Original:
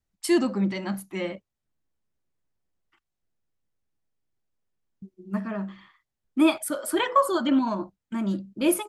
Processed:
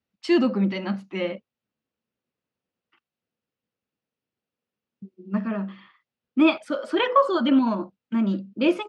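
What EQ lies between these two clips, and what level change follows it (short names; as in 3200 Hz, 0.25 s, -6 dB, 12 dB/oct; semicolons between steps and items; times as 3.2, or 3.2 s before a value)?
speaker cabinet 120–5200 Hz, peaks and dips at 230 Hz +7 dB, 490 Hz +7 dB, 1300 Hz +3 dB, 2700 Hz +6 dB; 0.0 dB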